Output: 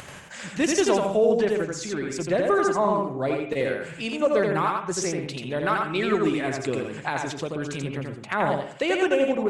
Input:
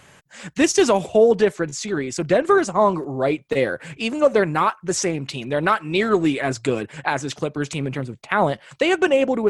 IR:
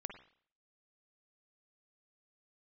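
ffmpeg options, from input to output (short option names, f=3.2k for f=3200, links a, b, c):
-filter_complex "[0:a]acompressor=mode=upward:threshold=-25dB:ratio=2.5,asplit=2[a][b];[1:a]atrim=start_sample=2205,adelay=85[c];[b][c]afir=irnorm=-1:irlink=0,volume=1dB[d];[a][d]amix=inputs=2:normalize=0,volume=-6.5dB"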